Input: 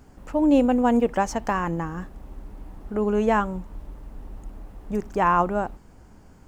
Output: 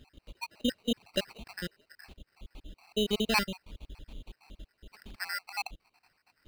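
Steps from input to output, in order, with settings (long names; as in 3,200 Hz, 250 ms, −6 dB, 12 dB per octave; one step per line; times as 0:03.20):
time-frequency cells dropped at random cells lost 72%
sample-rate reduction 3,400 Hz, jitter 0%
flat-topped bell 3,300 Hz +10 dB 1.2 octaves
level −5 dB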